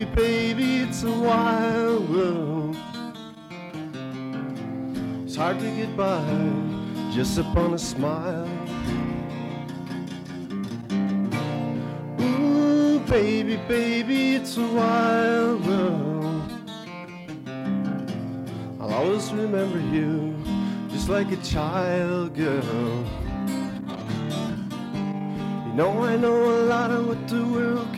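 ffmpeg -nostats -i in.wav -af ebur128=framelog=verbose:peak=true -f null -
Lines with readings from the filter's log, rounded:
Integrated loudness:
  I:         -24.9 LUFS
  Threshold: -35.2 LUFS
Loudness range:
  LRA:         7.0 LU
  Threshold: -45.5 LUFS
  LRA low:   -29.2 LUFS
  LRA high:  -22.2 LUFS
True peak:
  Peak:       -9.4 dBFS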